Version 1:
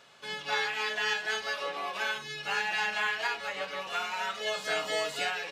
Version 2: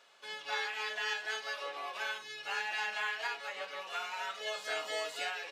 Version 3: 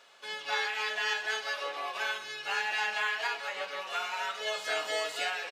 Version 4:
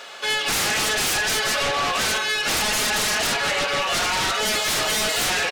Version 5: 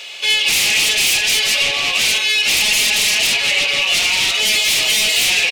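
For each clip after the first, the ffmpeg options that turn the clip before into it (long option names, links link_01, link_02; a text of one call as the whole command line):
ffmpeg -i in.wav -af "highpass=380,volume=-5.5dB" out.wav
ffmpeg -i in.wav -af "aecho=1:1:130|260|390|520|650:0.158|0.0888|0.0497|0.0278|0.0156,volume=4.5dB" out.wav
ffmpeg -i in.wav -af "aeval=exprs='0.112*sin(PI/2*6.31*val(0)/0.112)':channel_layout=same,bandreject=frequency=1000:width=14" out.wav
ffmpeg -i in.wav -af "highshelf=frequency=1900:width_type=q:width=3:gain=8.5,volume=-2.5dB" out.wav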